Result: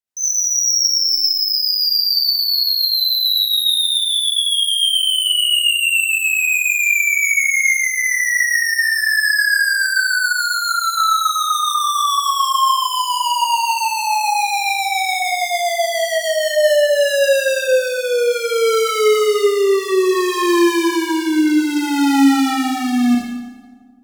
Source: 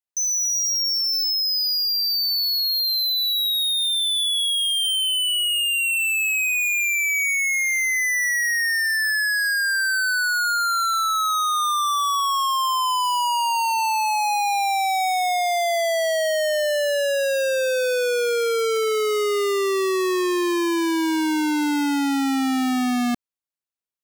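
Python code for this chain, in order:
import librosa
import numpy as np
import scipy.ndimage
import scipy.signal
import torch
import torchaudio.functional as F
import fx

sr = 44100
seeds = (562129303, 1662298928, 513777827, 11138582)

y = fx.highpass_res(x, sr, hz=1200.0, q=5.9, at=(14.3, 15.27), fade=0.02)
y = fx.rotary_switch(y, sr, hz=7.0, then_hz=0.6, switch_at_s=16.13)
y = fx.echo_filtered(y, sr, ms=84, feedback_pct=82, hz=2100.0, wet_db=-16)
y = fx.rev_schroeder(y, sr, rt60_s=1.0, comb_ms=29, drr_db=-3.0)
y = y * librosa.db_to_amplitude(3.0)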